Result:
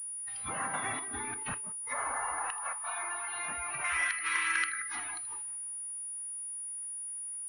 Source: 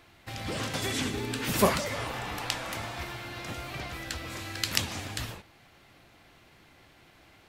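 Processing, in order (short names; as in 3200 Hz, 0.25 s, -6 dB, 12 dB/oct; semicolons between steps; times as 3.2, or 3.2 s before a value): in parallel at -5 dB: soft clip -16.5 dBFS, distortion -15 dB; on the sum: resonant low shelf 650 Hz -11.5 dB, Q 1.5; flipped gate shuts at -17 dBFS, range -24 dB; treble ducked by the level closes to 1900 Hz, closed at -30 dBFS; 3.84–4.68 EQ curve 760 Hz 0 dB, 2000 Hz +11 dB, 3600 Hz +4 dB; split-band echo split 2200 Hz, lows 0.179 s, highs 80 ms, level -7 dB; 1.43–1.87 gate -40 dBFS, range -7 dB; 2.51–3.33 HPF 150 Hz 12 dB/oct; spectral noise reduction 16 dB; pulse-width modulation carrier 9700 Hz; gain -2 dB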